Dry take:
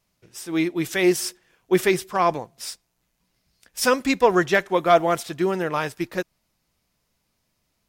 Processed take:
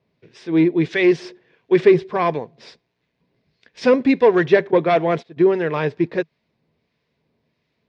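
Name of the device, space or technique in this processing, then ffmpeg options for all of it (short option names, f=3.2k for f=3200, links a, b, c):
guitar amplifier with harmonic tremolo: -filter_complex "[0:a]asplit=3[a][b][c];[a]afade=t=out:st=4.7:d=0.02[d];[b]agate=range=-18dB:threshold=-26dB:ratio=16:detection=peak,afade=t=in:st=4.7:d=0.02,afade=t=out:st=5.36:d=0.02[e];[c]afade=t=in:st=5.36:d=0.02[f];[d][e][f]amix=inputs=3:normalize=0,equalizer=f=190:t=o:w=0.25:g=-9,acrossover=split=1100[g][h];[g]aeval=exprs='val(0)*(1-0.5/2+0.5/2*cos(2*PI*1.5*n/s))':c=same[i];[h]aeval=exprs='val(0)*(1-0.5/2-0.5/2*cos(2*PI*1.5*n/s))':c=same[j];[i][j]amix=inputs=2:normalize=0,asoftclip=type=tanh:threshold=-15dB,highpass=100,equalizer=f=160:t=q:w=4:g=7,equalizer=f=230:t=q:w=4:g=5,equalizer=f=430:t=q:w=4:g=8,equalizer=f=810:t=q:w=4:g=-4,equalizer=f=1.3k:t=q:w=4:g=-9,equalizer=f=3k:t=q:w=4:g=-5,lowpass=f=3.7k:w=0.5412,lowpass=f=3.7k:w=1.3066,volume=7dB"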